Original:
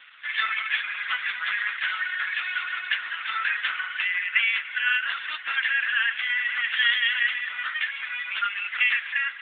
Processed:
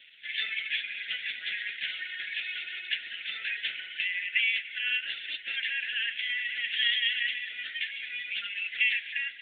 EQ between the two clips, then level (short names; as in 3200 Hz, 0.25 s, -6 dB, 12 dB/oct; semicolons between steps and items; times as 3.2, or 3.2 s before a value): Butterworth band-stop 1100 Hz, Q 0.57; 0.0 dB